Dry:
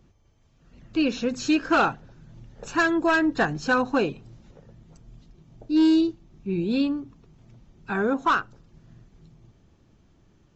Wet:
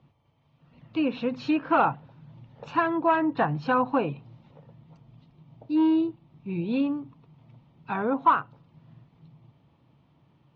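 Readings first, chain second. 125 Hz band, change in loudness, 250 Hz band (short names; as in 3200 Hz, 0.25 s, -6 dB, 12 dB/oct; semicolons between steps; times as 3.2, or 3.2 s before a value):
+0.5 dB, -2.0 dB, -3.0 dB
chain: treble ducked by the level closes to 2000 Hz, closed at -18.5 dBFS; speaker cabinet 130–3700 Hz, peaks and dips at 140 Hz +8 dB, 200 Hz -5 dB, 380 Hz -9 dB, 950 Hz +6 dB, 1600 Hz -8 dB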